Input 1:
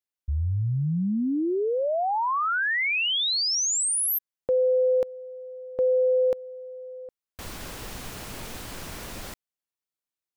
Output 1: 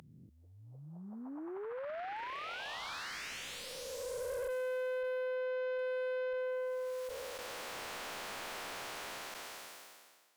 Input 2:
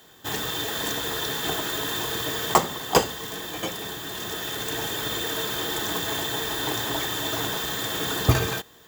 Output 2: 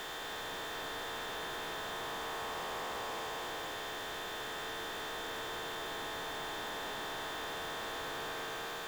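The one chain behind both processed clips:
spectrum smeared in time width 1,070 ms
high-pass filter 590 Hz 12 dB per octave
in parallel at −2 dB: downward compressor 6 to 1, threshold −44 dBFS
on the sum: tube saturation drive 37 dB, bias 0.4
slew-rate limiting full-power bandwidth 21 Hz
level +2 dB

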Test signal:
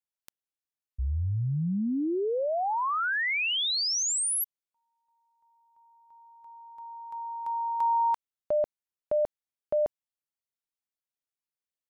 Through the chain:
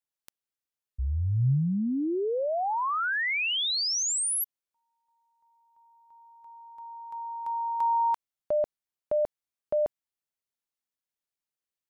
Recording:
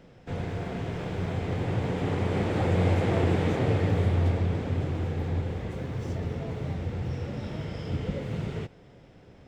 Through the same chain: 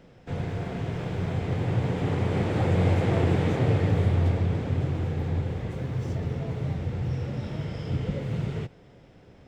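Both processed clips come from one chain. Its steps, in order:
dynamic equaliser 130 Hz, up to +6 dB, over −43 dBFS, Q 2.8

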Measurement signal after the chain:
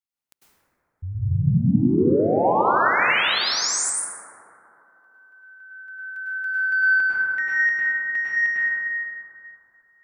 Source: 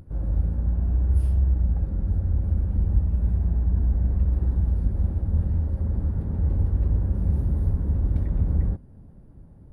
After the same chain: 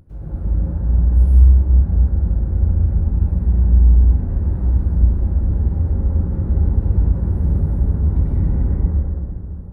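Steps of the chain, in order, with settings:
soft clipping −12.5 dBFS
dense smooth reverb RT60 3 s, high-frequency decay 0.25×, pre-delay 90 ms, DRR −9 dB
level −3.5 dB

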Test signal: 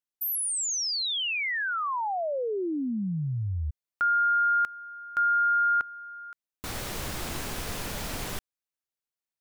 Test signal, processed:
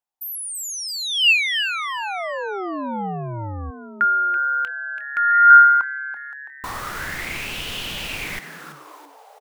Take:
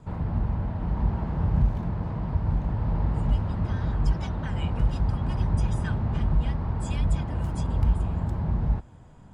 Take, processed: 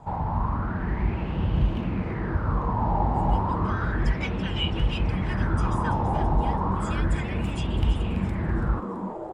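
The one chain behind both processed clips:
on a send: echo with shifted repeats 332 ms, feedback 50%, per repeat +140 Hz, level −10 dB
on the sum: auto-filter bell 0.32 Hz 810–3,000 Hz +18 dB
level −1 dB

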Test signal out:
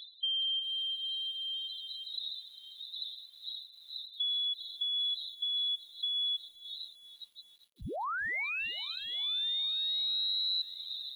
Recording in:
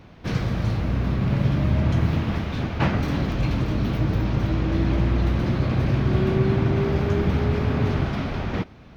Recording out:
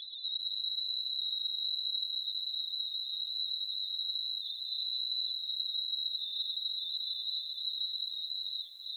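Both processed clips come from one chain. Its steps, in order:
wind on the microphone 540 Hz −28 dBFS
downward compressor 8 to 1, threshold −32 dBFS
spectral peaks only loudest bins 4
voice inversion scrambler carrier 4,000 Hz
feedback echo at a low word length 399 ms, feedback 55%, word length 9 bits, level −15 dB

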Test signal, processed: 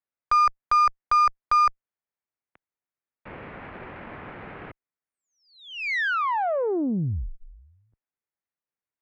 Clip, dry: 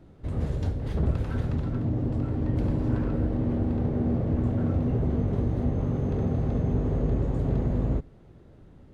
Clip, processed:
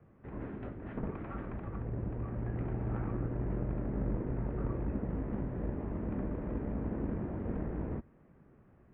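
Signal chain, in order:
single-sideband voice off tune −190 Hz 260–2,500 Hz
harmonic generator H 4 −19 dB, 7 −34 dB, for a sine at −12.5 dBFS
level −1 dB

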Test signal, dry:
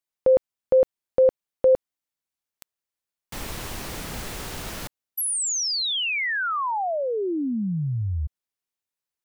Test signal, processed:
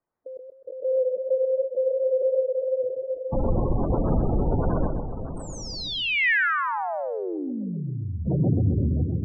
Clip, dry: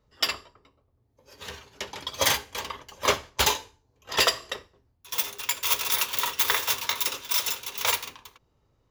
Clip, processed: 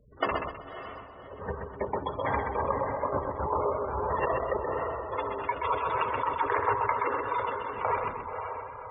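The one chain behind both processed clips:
in parallel at −1 dB: output level in coarse steps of 13 dB
on the sum: low-pass filter 1,100 Hz 12 dB per octave
feedback delay with all-pass diffusion 558 ms, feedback 50%, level −11 dB
compressor whose output falls as the input rises −30 dBFS, ratio −1
gate on every frequency bin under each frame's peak −15 dB strong
feedback echo with a swinging delay time 128 ms, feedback 35%, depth 55 cents, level −5 dB
level +4 dB

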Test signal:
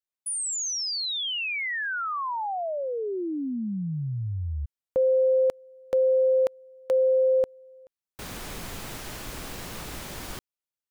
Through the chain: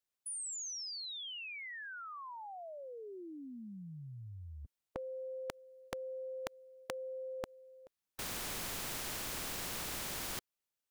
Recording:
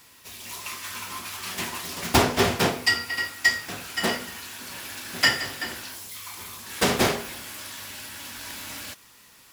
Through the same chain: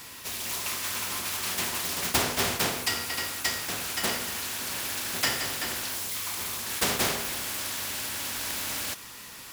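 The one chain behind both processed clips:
every bin compressed towards the loudest bin 2 to 1
level −4 dB

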